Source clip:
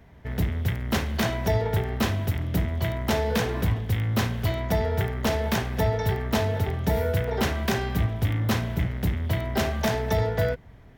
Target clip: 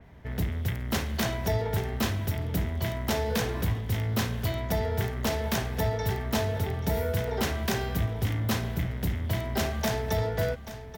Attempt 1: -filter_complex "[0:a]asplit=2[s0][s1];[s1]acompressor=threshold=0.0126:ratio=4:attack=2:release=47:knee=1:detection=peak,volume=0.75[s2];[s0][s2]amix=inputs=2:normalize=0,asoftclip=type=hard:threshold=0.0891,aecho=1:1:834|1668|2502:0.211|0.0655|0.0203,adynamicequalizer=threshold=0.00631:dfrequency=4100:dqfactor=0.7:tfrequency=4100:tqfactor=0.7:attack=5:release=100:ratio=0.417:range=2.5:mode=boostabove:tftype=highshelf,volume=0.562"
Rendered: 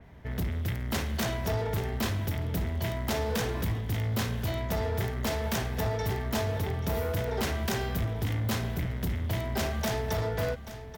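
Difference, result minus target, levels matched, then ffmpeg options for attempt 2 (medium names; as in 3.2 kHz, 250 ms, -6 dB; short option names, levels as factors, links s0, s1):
hard clipper: distortion +20 dB
-filter_complex "[0:a]asplit=2[s0][s1];[s1]acompressor=threshold=0.0126:ratio=4:attack=2:release=47:knee=1:detection=peak,volume=0.75[s2];[s0][s2]amix=inputs=2:normalize=0,asoftclip=type=hard:threshold=0.178,aecho=1:1:834|1668|2502:0.211|0.0655|0.0203,adynamicequalizer=threshold=0.00631:dfrequency=4100:dqfactor=0.7:tfrequency=4100:tqfactor=0.7:attack=5:release=100:ratio=0.417:range=2.5:mode=boostabove:tftype=highshelf,volume=0.562"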